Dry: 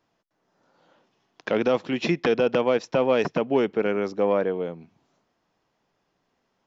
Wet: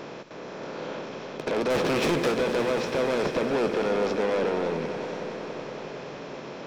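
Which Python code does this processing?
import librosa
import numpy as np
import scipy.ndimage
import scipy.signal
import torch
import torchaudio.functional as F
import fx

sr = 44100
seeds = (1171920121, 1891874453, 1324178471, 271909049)

y = fx.bin_compress(x, sr, power=0.4)
y = fx.leveller(y, sr, passes=2, at=(1.7, 2.32))
y = 10.0 ** (-20.0 / 20.0) * np.tanh(y / 10.0 ** (-20.0 / 20.0))
y = fx.doubler(y, sr, ms=14.0, db=-13.0)
y = fx.echo_swell(y, sr, ms=93, loudest=5, wet_db=-15.5)
y = y * 10.0 ** (-2.5 / 20.0)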